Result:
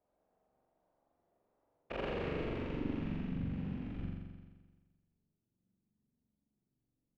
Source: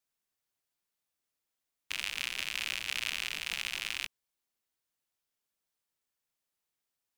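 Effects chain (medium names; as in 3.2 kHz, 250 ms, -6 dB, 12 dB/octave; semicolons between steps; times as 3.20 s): whisper effect; low-pass sweep 660 Hz -> 210 Hz, 1.63–3.33 s; flutter echo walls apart 7.4 m, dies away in 1.4 s; trim +13 dB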